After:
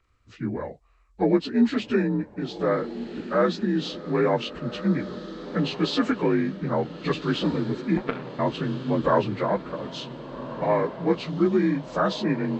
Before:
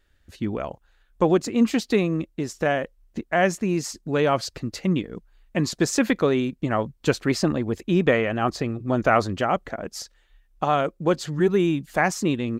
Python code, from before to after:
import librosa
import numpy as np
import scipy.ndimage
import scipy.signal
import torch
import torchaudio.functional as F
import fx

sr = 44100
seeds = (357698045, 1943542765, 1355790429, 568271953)

y = fx.partial_stretch(x, sr, pct=84)
y = fx.power_curve(y, sr, exponent=3.0, at=(7.97, 8.39))
y = fx.echo_diffused(y, sr, ms=1515, feedback_pct=46, wet_db=-12)